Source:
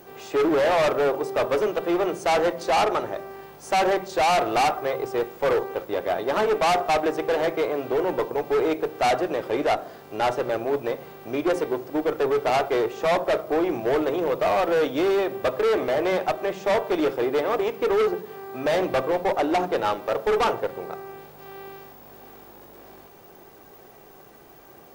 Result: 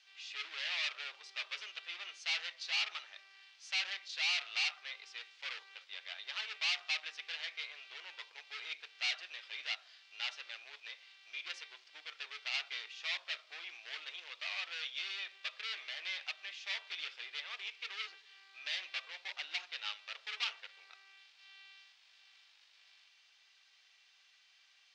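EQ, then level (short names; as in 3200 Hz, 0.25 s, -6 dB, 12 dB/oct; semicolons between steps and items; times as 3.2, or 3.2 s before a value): Butterworth band-pass 3500 Hz, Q 1.2; air absorption 64 m; tilt +2.5 dB/oct; -4.5 dB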